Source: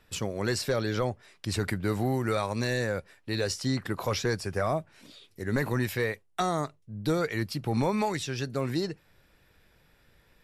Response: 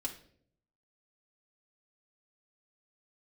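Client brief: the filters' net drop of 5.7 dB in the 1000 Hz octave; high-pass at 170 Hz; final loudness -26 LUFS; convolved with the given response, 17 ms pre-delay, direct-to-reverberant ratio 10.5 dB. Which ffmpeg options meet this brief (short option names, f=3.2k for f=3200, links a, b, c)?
-filter_complex "[0:a]highpass=170,equalizer=f=1k:t=o:g=-8,asplit=2[a][b];[1:a]atrim=start_sample=2205,adelay=17[c];[b][c]afir=irnorm=-1:irlink=0,volume=-10.5dB[d];[a][d]amix=inputs=2:normalize=0,volume=6dB"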